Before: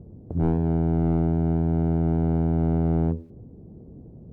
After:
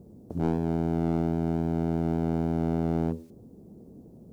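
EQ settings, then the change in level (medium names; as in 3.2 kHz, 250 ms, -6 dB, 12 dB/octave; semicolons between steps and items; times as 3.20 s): tone controls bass -9 dB, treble +12 dB; peaking EQ 210 Hz +6.5 dB 0.79 oct; treble shelf 2 kHz +7.5 dB; -2.0 dB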